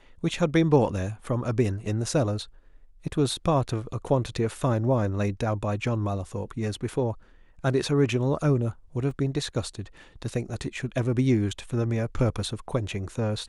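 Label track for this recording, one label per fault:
9.110000	9.110000	drop-out 2.2 ms

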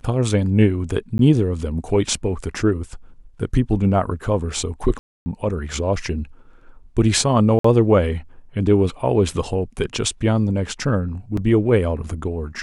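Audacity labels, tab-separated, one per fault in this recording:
1.180000	1.190000	drop-out 12 ms
4.990000	5.260000	drop-out 270 ms
7.590000	7.640000	drop-out 54 ms
11.370000	11.370000	drop-out 3.5 ms

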